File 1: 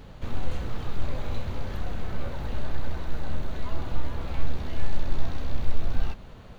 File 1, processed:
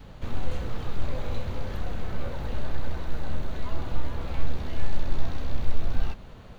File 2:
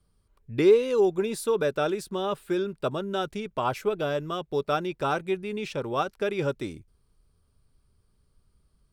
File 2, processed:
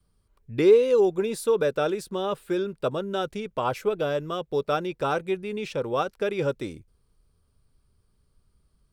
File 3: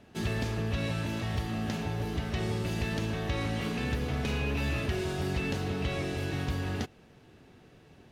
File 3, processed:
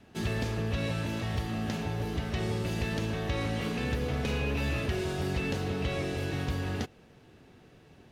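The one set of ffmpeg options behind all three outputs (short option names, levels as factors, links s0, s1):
-af "adynamicequalizer=threshold=0.00447:dfrequency=500:dqfactor=6.1:tfrequency=500:tqfactor=6.1:attack=5:release=100:ratio=0.375:range=3.5:mode=boostabove:tftype=bell"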